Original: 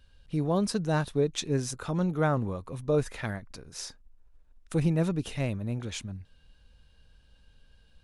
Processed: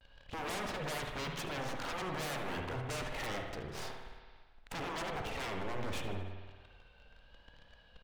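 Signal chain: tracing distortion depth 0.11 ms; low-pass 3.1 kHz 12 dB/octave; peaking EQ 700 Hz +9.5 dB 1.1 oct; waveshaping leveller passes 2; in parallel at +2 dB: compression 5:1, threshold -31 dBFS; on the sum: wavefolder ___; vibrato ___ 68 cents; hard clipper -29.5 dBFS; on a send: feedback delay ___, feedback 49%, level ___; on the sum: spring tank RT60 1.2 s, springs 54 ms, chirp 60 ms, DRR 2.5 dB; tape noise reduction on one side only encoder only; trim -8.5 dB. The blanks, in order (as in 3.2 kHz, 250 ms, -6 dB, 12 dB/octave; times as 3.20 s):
-24.5 dBFS, 0.69 Hz, 77 ms, -15.5 dB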